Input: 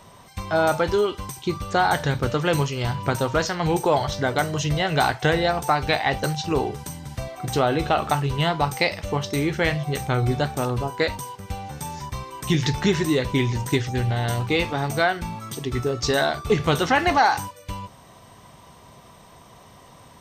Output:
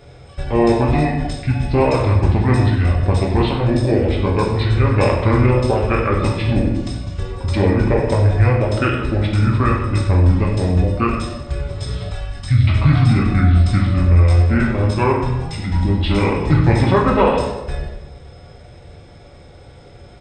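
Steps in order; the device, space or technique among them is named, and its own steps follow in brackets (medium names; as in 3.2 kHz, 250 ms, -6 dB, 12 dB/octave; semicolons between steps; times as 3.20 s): monster voice (pitch shift -5.5 st; formant shift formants -3 st; bass shelf 150 Hz +9 dB; delay 95 ms -13 dB; reverberation RT60 1.0 s, pre-delay 4 ms, DRR -1 dB); 12.11–12.67 s: peaking EQ 190 Hz -> 1.1 kHz -15 dB 1.7 oct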